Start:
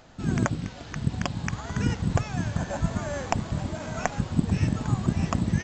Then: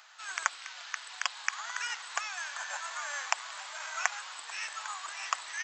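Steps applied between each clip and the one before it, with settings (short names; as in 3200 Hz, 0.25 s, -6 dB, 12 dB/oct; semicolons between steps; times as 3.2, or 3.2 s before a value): inverse Chebyshev high-pass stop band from 180 Hz, stop band 80 dB; gain +3 dB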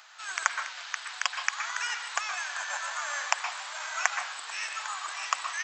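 reverb RT60 0.40 s, pre-delay 0.112 s, DRR 5.5 dB; gain +3 dB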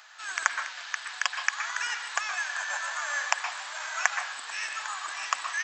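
small resonant body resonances 240/1700 Hz, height 7 dB, ringing for 25 ms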